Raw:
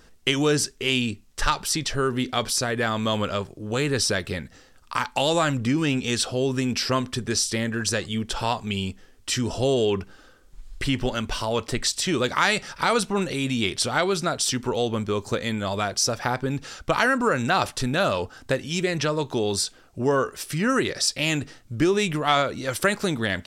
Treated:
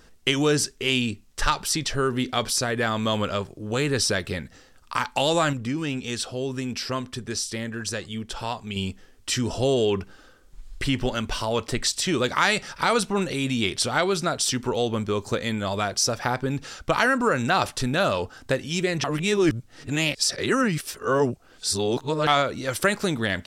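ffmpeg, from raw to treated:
-filter_complex "[0:a]asplit=5[s0][s1][s2][s3][s4];[s0]atrim=end=5.532[s5];[s1]atrim=start=5.528:end=8.762,asetpts=PTS-STARTPTS,volume=0.562[s6];[s2]atrim=start=8.758:end=19.042[s7];[s3]atrim=start=19.038:end=22.272,asetpts=PTS-STARTPTS,areverse[s8];[s4]atrim=start=22.268[s9];[s5][s6]acrossfade=d=0.004:c1=hsin:c2=hsin[s10];[s10][s7]acrossfade=d=0.004:c1=hsin:c2=hsin[s11];[s11][s8]acrossfade=d=0.004:c1=hsin:c2=hsin[s12];[s12][s9]acrossfade=d=0.004:c1=hsin:c2=hsin"

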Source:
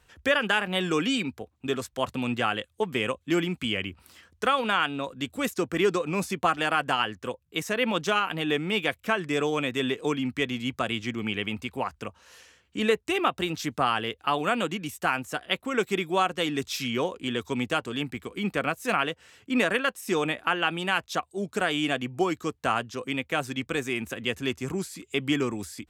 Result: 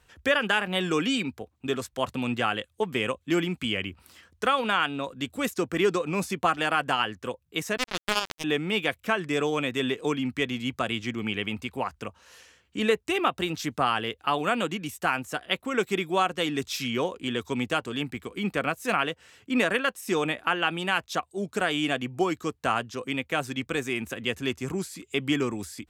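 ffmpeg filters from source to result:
-filter_complex "[0:a]asettb=1/sr,asplit=3[s0][s1][s2];[s0]atrim=end=7.774[s3];[s1]atrim=start=7.77:end=8.44,asetpts=PTS-STARTPTS,afade=t=in:d=0.004:c=qsin,afade=t=out:st=0.666:d=0.004:c=qsin,acrusher=bits=2:mix=0:aa=0.5[s4];[s2]atrim=start=8.436[s5];[s3][s4]acrossfade=d=0.004:c1=hsin:c2=qsin[s6];[s6][s5]acrossfade=d=0.004:c1=qsin:c2=hsin"

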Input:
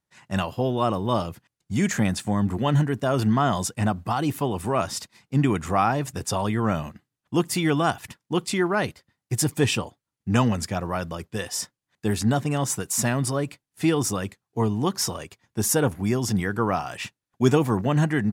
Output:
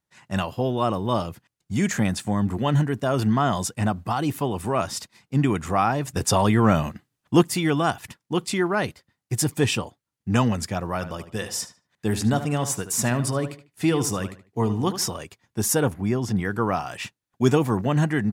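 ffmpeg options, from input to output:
-filter_complex "[0:a]asettb=1/sr,asplit=3[s0][s1][s2];[s0]atrim=end=6.164[s3];[s1]atrim=start=6.16:end=7.43,asetpts=PTS-STARTPTS,afade=t=in:d=0.004:c=qsin,afade=t=out:st=1.266:d=0.004:c=qsin,acontrast=55[s4];[s2]atrim=start=7.426[s5];[s3][s4]acrossfade=d=0.004:c1=hsin:c2=qsin[s6];[s6][s5]acrossfade=d=0.004:c1=qsin:c2=hsin,asettb=1/sr,asplit=3[s7][s8][s9];[s7]atrim=end=10.944[s10];[s8]atrim=start=10.94:end=15.08,asetpts=PTS-STARTPTS,afade=t=in:d=0.004:c=qsin,afade=t=out:st=4.136:d=0.004:c=qsin,asplit=2[s11][s12];[s12]adelay=75,lowpass=f=3600:p=1,volume=0.282,asplit=2[s13][s14];[s14]adelay=75,lowpass=f=3600:p=1,volume=0.3,asplit=2[s15][s16];[s16]adelay=75,lowpass=f=3600:p=1,volume=0.3[s17];[s11][s13][s15][s17]amix=inputs=4:normalize=0,atrim=end_sample=182574[s18];[s9]atrim=start=15.076[s19];[s10][s18]acrossfade=d=0.004:c1=hsin:c2=qsin[s20];[s20][s19]acrossfade=d=0.004:c1=qsin:c2=hsin,asettb=1/sr,asplit=3[s21][s22][s23];[s21]atrim=end=15.944[s24];[s22]atrim=start=15.94:end=16.45,asetpts=PTS-STARTPTS,afade=t=in:d=0.004:c=qsin,afade=t=out:st=0.506:d=0.004:c=qsin,highshelf=f=4100:g=-11[s25];[s23]atrim=start=16.446[s26];[s24][s25]acrossfade=d=0.004:c1=hsin:c2=qsin[s27];[s27][s26]acrossfade=d=0.004:c1=qsin:c2=hsin"

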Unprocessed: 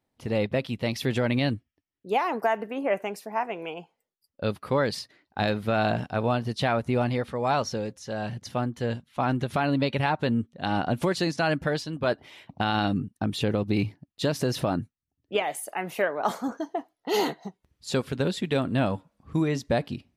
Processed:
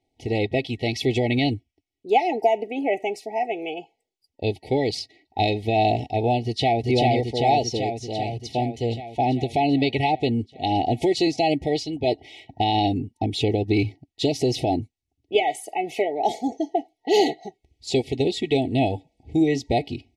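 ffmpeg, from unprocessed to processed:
-filter_complex "[0:a]asplit=2[s0][s1];[s1]afade=t=in:st=6.44:d=0.01,afade=t=out:st=6.86:d=0.01,aecho=0:1:390|780|1170|1560|1950|2340|2730|3120|3510|3900|4290|4680:0.891251|0.623876|0.436713|0.305699|0.213989|0.149793|0.104855|0.0733983|0.0513788|0.0359652|0.0251756|0.0176229[s2];[s0][s2]amix=inputs=2:normalize=0,afftfilt=real='re*(1-between(b*sr/4096,900,1900))':imag='im*(1-between(b*sr/4096,900,1900))':win_size=4096:overlap=0.75,lowpass=7200,aecho=1:1:2.7:0.69,volume=1.5"

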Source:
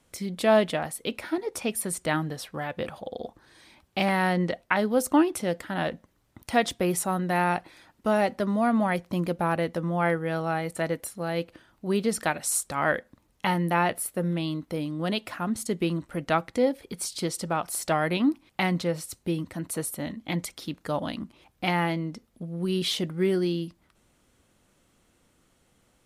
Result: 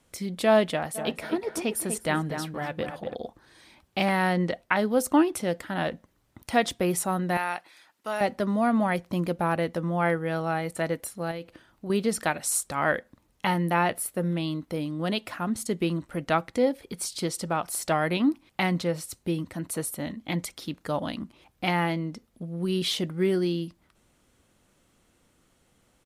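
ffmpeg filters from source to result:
-filter_complex "[0:a]asplit=3[s0][s1][s2];[s0]afade=t=out:st=0.94:d=0.02[s3];[s1]asplit=2[s4][s5];[s5]adelay=245,lowpass=f=1600:p=1,volume=0.473,asplit=2[s6][s7];[s7]adelay=245,lowpass=f=1600:p=1,volume=0.36,asplit=2[s8][s9];[s9]adelay=245,lowpass=f=1600:p=1,volume=0.36,asplit=2[s10][s11];[s11]adelay=245,lowpass=f=1600:p=1,volume=0.36[s12];[s4][s6][s8][s10][s12]amix=inputs=5:normalize=0,afade=t=in:st=0.94:d=0.02,afade=t=out:st=3.14:d=0.02[s13];[s2]afade=t=in:st=3.14:d=0.02[s14];[s3][s13][s14]amix=inputs=3:normalize=0,asettb=1/sr,asplit=3[s15][s16][s17];[s15]atrim=end=7.374[s18];[s16]atrim=start=7.37:end=8.21,asetpts=PTS-STARTPTS,afade=t=in:d=0.004:c=qsin,afade=t=out:st=0.836:d=0.004:c=qsin,highpass=f=1300:p=1[s19];[s17]atrim=start=8.206[s20];[s18][s19]acrossfade=d=0.004:c1=hsin:c2=qsin[s21];[s21][s20]acrossfade=d=0.004:c1=qsin:c2=hsin,asettb=1/sr,asplit=3[s22][s23][s24];[s22]atrim=end=11.314[s25];[s23]atrim=start=11.31:end=11.9,asetpts=PTS-STARTPTS,afade=t=in:d=0.004:c=qsin,afade=t=out:st=0.586:d=0.004:c=qsin,acompressor=threshold=0.0251:ratio=6:attack=3.2:release=140:knee=1:detection=peak[s26];[s24]atrim=start=11.896[s27];[s25][s26]acrossfade=d=0.004:c1=hsin:c2=qsin[s28];[s28][s27]acrossfade=d=0.004:c1=qsin:c2=hsin"

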